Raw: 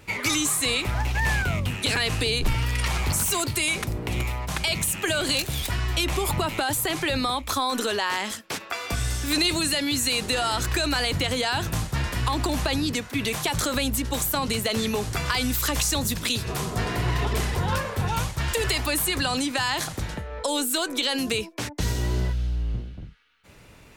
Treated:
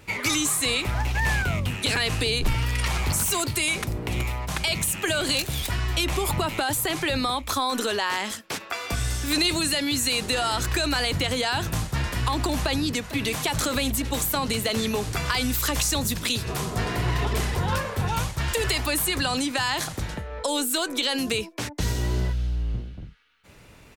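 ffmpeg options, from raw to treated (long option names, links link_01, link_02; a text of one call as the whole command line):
ffmpeg -i in.wav -filter_complex "[0:a]asplit=2[link_01][link_02];[link_02]afade=type=in:start_time=12.58:duration=0.01,afade=type=out:start_time=13.46:duration=0.01,aecho=0:1:450|900|1350|1800|2250|2700|3150|3600|4050|4500|4950:0.188365|0.141274|0.105955|0.0794664|0.0595998|0.0446999|0.0335249|0.0251437|0.0188578|0.0141433|0.0106075[link_03];[link_01][link_03]amix=inputs=2:normalize=0" out.wav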